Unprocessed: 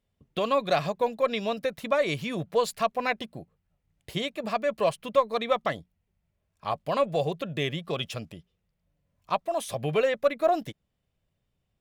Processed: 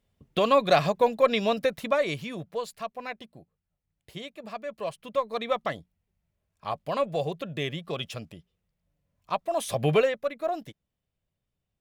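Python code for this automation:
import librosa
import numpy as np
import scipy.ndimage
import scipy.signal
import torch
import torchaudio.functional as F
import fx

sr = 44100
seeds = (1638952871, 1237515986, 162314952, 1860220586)

y = fx.gain(x, sr, db=fx.line((1.63, 4.0), (2.7, -9.0), (4.77, -9.0), (5.44, -2.0), (9.32, -2.0), (9.92, 6.0), (10.2, -6.0)))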